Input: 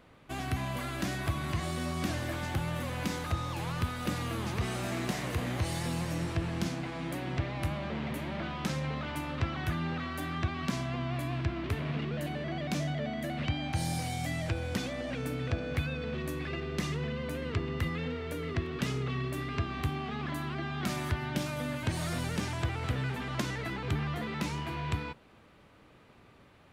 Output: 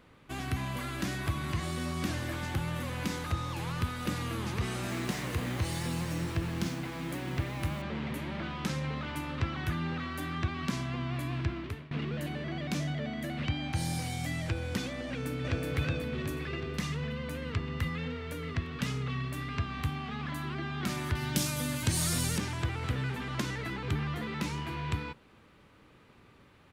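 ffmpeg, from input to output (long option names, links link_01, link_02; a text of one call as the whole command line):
ffmpeg -i in.wav -filter_complex "[0:a]asettb=1/sr,asplit=3[link_01][link_02][link_03];[link_01]atrim=end=4.894[link_04];[link_02]atrim=start=4.89:end=7.82,asetpts=PTS-STARTPTS,afade=type=in:duration=0.004:curve=qsin,afade=type=out:start_time=2.926:duration=0.004:curve=qsin,acrusher=bits=7:mix=0:aa=0.5[link_05];[link_03]atrim=start=7.816[link_06];[link_04][link_05]acrossfade=duration=0.004:curve1=hsin:curve2=qsin[link_07];[link_07][link_06]acrossfade=duration=0.004:curve1=qsin:curve2=hsin,asplit=2[link_08][link_09];[link_09]afade=type=in:start_time=15.07:duration=0.01,afade=type=out:start_time=15.65:duration=0.01,aecho=0:1:370|740|1110|1480|1850|2220|2590:0.841395|0.420698|0.210349|0.105174|0.0525872|0.0262936|0.0131468[link_10];[link_08][link_10]amix=inputs=2:normalize=0,asettb=1/sr,asplit=3[link_11][link_12][link_13];[link_11]atrim=end=16.734[link_14];[link_12]atrim=start=16.73:end=20.44,asetpts=PTS-STARTPTS,afade=type=in:duration=0.004:curve=qsin,afade=type=out:start_time=3.706:duration=0.004:curve=qsin,equalizer=frequency=360:width=4.8:gain=-13[link_15];[link_13]atrim=start=20.436[link_16];[link_14][link_15]acrossfade=duration=0.004:curve1=hsin:curve2=qsin[link_17];[link_17][link_16]acrossfade=duration=0.004:curve1=qsin:curve2=hsin,asettb=1/sr,asplit=3[link_18][link_19][link_20];[link_18]atrim=end=21.154[link_21];[link_19]atrim=start=21.15:end=22.38,asetpts=PTS-STARTPTS,afade=type=in:duration=0.004:curve=qsin,afade=type=out:start_time=1.226:duration=0.004:curve=qsin,bass=frequency=250:gain=3,treble=frequency=4000:gain=14[link_22];[link_20]atrim=start=22.376[link_23];[link_21][link_22]acrossfade=duration=0.004:curve1=hsin:curve2=qsin[link_24];[link_24][link_23]acrossfade=duration=0.004:curve1=qsin:curve2=hsin,asplit=2[link_25][link_26];[link_25]atrim=end=11.91,asetpts=PTS-STARTPTS,afade=type=out:start_time=11.5:duration=0.41:silence=0.0841395[link_27];[link_26]atrim=start=11.91,asetpts=PTS-STARTPTS,afade=type=in:duration=0.004:curve=hsin:silence=0.0841395[link_28];[link_27][link_28]concat=n=2:v=0:a=1,equalizer=frequency=670:width=3.1:gain=-5.5" out.wav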